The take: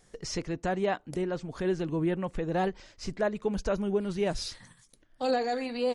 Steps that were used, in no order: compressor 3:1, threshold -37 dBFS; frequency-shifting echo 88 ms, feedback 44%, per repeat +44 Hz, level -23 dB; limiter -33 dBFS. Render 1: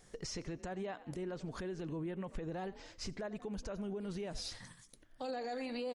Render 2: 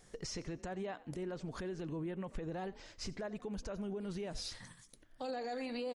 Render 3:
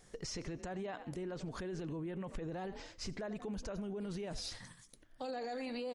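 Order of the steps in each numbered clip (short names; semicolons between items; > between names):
frequency-shifting echo > compressor > limiter; compressor > frequency-shifting echo > limiter; frequency-shifting echo > limiter > compressor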